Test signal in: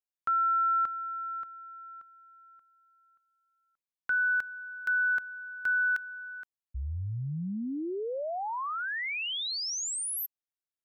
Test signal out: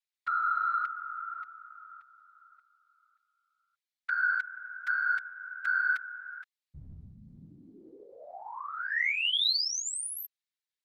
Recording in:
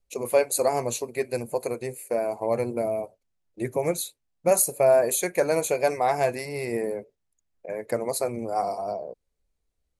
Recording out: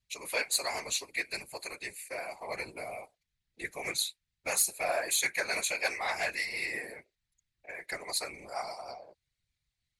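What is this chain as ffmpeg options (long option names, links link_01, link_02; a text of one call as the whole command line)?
ffmpeg -i in.wav -af "equalizer=frequency=125:width_type=o:width=1:gain=-9,equalizer=frequency=250:width_type=o:width=1:gain=-10,equalizer=frequency=500:width_type=o:width=1:gain=-9,equalizer=frequency=2000:width_type=o:width=1:gain=11,equalizer=frequency=4000:width_type=o:width=1:gain=12,equalizer=frequency=8000:width_type=o:width=1:gain=4,acontrast=87,afftfilt=real='hypot(re,im)*cos(2*PI*random(0))':imag='hypot(re,im)*sin(2*PI*random(1))':win_size=512:overlap=0.75,volume=-9dB" out.wav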